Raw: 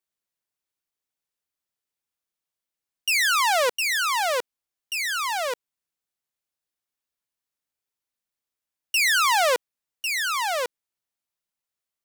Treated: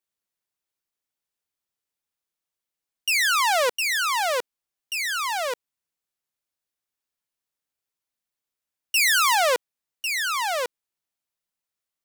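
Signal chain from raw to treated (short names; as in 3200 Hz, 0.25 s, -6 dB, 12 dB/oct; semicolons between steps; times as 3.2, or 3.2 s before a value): 8.95–9.35 high shelf 8300 Hz +6 dB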